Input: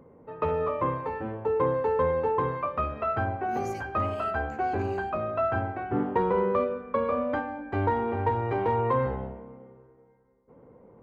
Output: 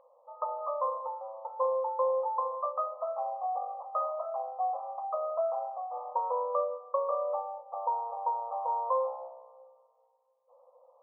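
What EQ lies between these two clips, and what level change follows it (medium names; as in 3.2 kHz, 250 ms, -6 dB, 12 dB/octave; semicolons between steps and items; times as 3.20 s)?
brick-wall FIR band-pass 490–1300 Hz; distance through air 480 m; 0.0 dB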